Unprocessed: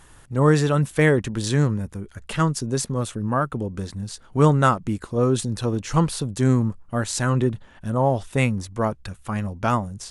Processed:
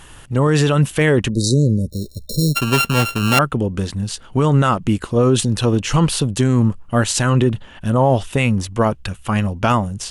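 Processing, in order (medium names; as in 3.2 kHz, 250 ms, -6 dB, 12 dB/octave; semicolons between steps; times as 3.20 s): 1.90–3.39 s: sorted samples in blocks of 32 samples; 1.29–2.56 s: spectral selection erased 610–3700 Hz; peak limiter -13.5 dBFS, peak gain reduction 10.5 dB; peaking EQ 2.9 kHz +8.5 dB 0.4 oct; trim +8 dB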